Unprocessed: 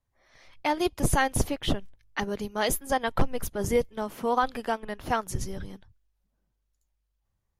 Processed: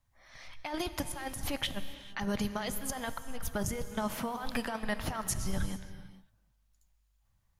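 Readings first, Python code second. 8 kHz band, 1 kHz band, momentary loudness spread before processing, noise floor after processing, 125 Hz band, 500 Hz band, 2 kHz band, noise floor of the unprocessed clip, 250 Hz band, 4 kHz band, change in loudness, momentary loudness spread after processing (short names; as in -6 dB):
-4.0 dB, -10.5 dB, 9 LU, -72 dBFS, -6.5 dB, -10.0 dB, -7.0 dB, -78 dBFS, -4.5 dB, -3.5 dB, -7.5 dB, 10 LU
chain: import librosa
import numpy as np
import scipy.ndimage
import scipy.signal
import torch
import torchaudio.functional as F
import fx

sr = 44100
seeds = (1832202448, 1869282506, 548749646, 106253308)

y = fx.peak_eq(x, sr, hz=400.0, db=-10.5, octaves=0.9)
y = fx.over_compress(y, sr, threshold_db=-35.0, ratio=-1.0)
y = fx.rev_gated(y, sr, seeds[0], gate_ms=480, shape='flat', drr_db=10.5)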